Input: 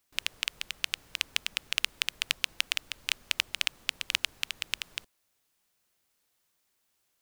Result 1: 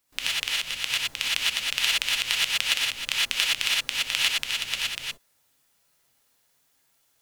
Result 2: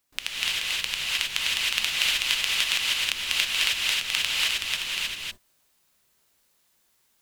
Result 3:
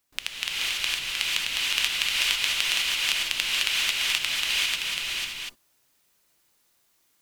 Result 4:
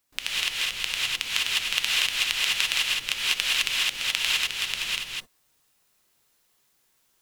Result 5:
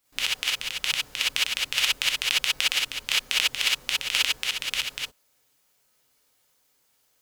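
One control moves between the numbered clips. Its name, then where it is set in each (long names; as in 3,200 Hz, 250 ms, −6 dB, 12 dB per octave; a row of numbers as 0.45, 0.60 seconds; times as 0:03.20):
reverb whose tail is shaped and stops, gate: 140, 340, 520, 230, 80 milliseconds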